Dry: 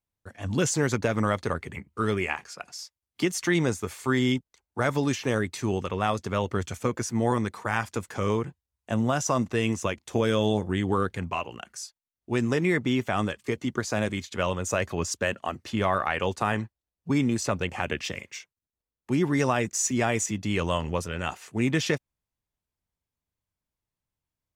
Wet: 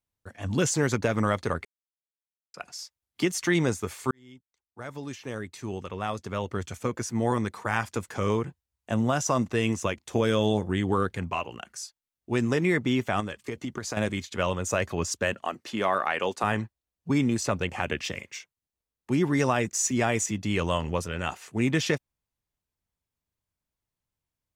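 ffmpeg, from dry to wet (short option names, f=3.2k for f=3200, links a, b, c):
-filter_complex "[0:a]asettb=1/sr,asplit=3[a][b][c];[a]atrim=end=13.204[d];[b]atrim=start=13.2:end=13.97,asetpts=PTS-STARTPTS,afade=t=in:d=0.004:c=qsin,afade=t=out:st=0.766:d=0.004:c=qsin,acompressor=threshold=-28dB:ratio=6:attack=3.2:release=140:knee=1:detection=peak[e];[c]atrim=start=13.966[f];[d][e]acrossfade=d=0.004:c1=hsin:c2=qsin[g];[g][f]acrossfade=d=0.004:c1=qsin:c2=hsin,asettb=1/sr,asplit=3[h][i][j];[h]atrim=end=15.444[k];[i]atrim=start=15.44:end=16.44,asetpts=PTS-STARTPTS,afade=t=in:d=0.004:c=qsin,afade=t=out:st=0.996:d=0.004:c=qsin,highpass=230[l];[j]atrim=start=16.436[m];[k][l]acrossfade=d=0.004:c1=hsin:c2=qsin[n];[n][m]acrossfade=d=0.004:c1=qsin:c2=hsin,asplit=4[o][p][q][r];[o]atrim=end=1.65,asetpts=PTS-STARTPTS,afade=t=out:st=1.646:d=0.004:c=hsin[s];[p]atrim=start=1.65:end=2.54,asetpts=PTS-STARTPTS,volume=0[t];[q]atrim=start=2.54:end=4.11,asetpts=PTS-STARTPTS,afade=t=in:d=0.004:c=hsin,afade=t=out:st=1.566:d=0.004:c=hsin[u];[r]atrim=start=4.11,asetpts=PTS-STARTPTS,afade=t=in:d=3.61[v];[s][t][u][v]concat=n=4:v=0:a=1"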